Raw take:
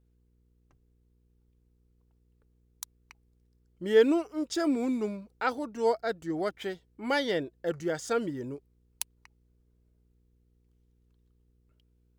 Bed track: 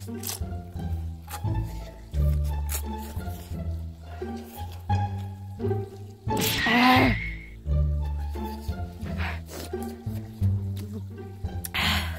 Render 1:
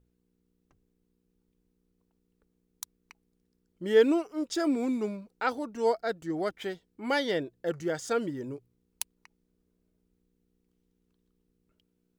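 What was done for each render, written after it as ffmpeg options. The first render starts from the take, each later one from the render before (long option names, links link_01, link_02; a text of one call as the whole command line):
ffmpeg -i in.wav -af "bandreject=frequency=60:width_type=h:width=4,bandreject=frequency=120:width_type=h:width=4" out.wav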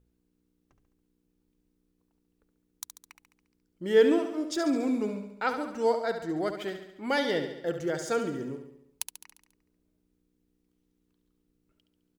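ffmpeg -i in.wav -af "aecho=1:1:70|140|210|280|350|420|490:0.376|0.214|0.122|0.0696|0.0397|0.0226|0.0129" out.wav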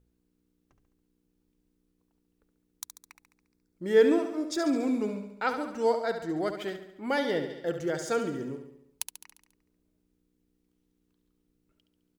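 ffmpeg -i in.wav -filter_complex "[0:a]asettb=1/sr,asplit=3[link_01][link_02][link_03];[link_01]atrim=end=2.884[link_04];[link_02]atrim=start=2.88:end=4.62,asetpts=PTS-STARTPTS,afade=type=in:duration=0.004:curve=qsin,afade=type=out:start_time=1.736:duration=0.004:curve=qsin,bandreject=frequency=3000:width=5.7[link_05];[link_03]atrim=start=4.616[link_06];[link_04][link_05]acrossfade=duration=0.004:curve1=hsin:curve2=qsin[link_07];[link_07][link_06]acrossfade=duration=0.004:curve1=qsin:curve2=hsin,asettb=1/sr,asplit=3[link_08][link_09][link_10];[link_08]atrim=end=6.764[link_11];[link_09]atrim=start=6.76:end=7.5,asetpts=PTS-STARTPTS,afade=type=in:duration=0.004:curve=qsin,afade=type=out:start_time=0.736:duration=0.004:curve=qsin,equalizer=frequency=4600:width_type=o:width=2.4:gain=-4.5[link_12];[link_10]atrim=start=7.496[link_13];[link_11][link_12]acrossfade=duration=0.004:curve1=hsin:curve2=qsin[link_14];[link_14][link_13]acrossfade=duration=0.004:curve1=qsin:curve2=hsin" out.wav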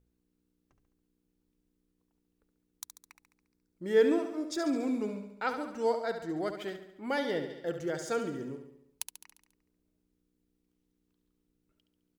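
ffmpeg -i in.wav -af "volume=-3.5dB" out.wav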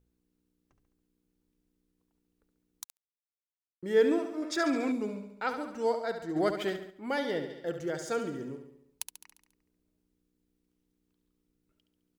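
ffmpeg -i in.wav -filter_complex "[0:a]asettb=1/sr,asplit=3[link_01][link_02][link_03];[link_01]atrim=end=2.844[link_04];[link_02]atrim=start=2.84:end=3.83,asetpts=PTS-STARTPTS,afade=type=in:duration=0.004:curve=qsin,afade=type=out:start_time=0.986:duration=0.004:curve=qsin,acrusher=bits=4:mix=0:aa=0.5[link_05];[link_03]atrim=start=3.826[link_06];[link_04][link_05]acrossfade=duration=0.004:curve1=hsin:curve2=qsin[link_07];[link_07][link_06]acrossfade=duration=0.004:curve1=qsin:curve2=hsin,asettb=1/sr,asplit=3[link_08][link_09][link_10];[link_08]atrim=end=4.424[link_11];[link_09]atrim=start=4.42:end=4.92,asetpts=PTS-STARTPTS,afade=type=in:duration=0.004:curve=qsin,afade=type=out:start_time=0.496:duration=0.004:curve=qsin,equalizer=frequency=1800:width_type=o:width=2.1:gain=10.5[link_12];[link_10]atrim=start=4.916[link_13];[link_11][link_12]acrossfade=duration=0.004:curve1=hsin:curve2=qsin[link_14];[link_14][link_13]acrossfade=duration=0.004:curve1=qsin:curve2=hsin,asplit=3[link_15][link_16][link_17];[link_15]afade=type=out:start_time=6.35:duration=0.02[link_18];[link_16]acontrast=56,afade=type=in:start_time=6.35:duration=0.02,afade=type=out:start_time=6.89:duration=0.02[link_19];[link_17]afade=type=in:start_time=6.89:duration=0.02[link_20];[link_18][link_19][link_20]amix=inputs=3:normalize=0" out.wav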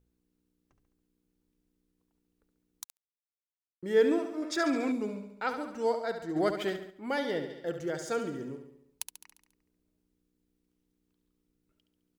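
ffmpeg -i in.wav -af anull out.wav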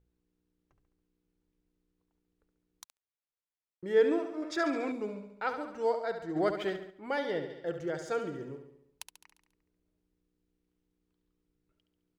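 ffmpeg -i in.wav -af "lowpass=frequency=3100:poles=1,equalizer=frequency=240:width=3.2:gain=-7.5" out.wav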